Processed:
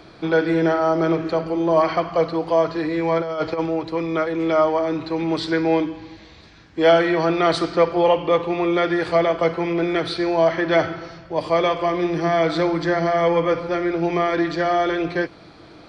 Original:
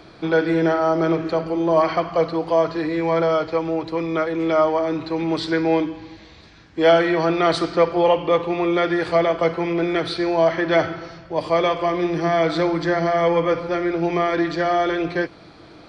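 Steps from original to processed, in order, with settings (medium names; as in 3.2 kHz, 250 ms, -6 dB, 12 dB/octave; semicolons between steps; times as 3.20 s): 3.18–3.66 s: compressor with a negative ratio -22 dBFS, ratio -0.5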